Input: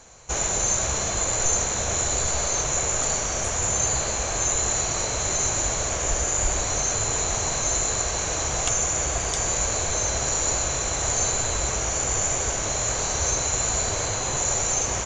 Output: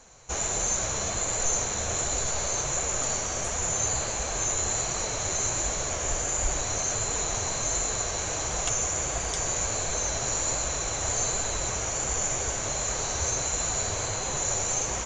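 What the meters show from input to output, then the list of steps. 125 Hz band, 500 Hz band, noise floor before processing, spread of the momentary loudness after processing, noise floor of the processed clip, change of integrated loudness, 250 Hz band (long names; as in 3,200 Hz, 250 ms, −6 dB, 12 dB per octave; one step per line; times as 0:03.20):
−4.5 dB, −4.0 dB, −27 dBFS, 3 LU, −31 dBFS, −4.0 dB, −4.0 dB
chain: flanger 1.4 Hz, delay 3.6 ms, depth 7.7 ms, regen −43%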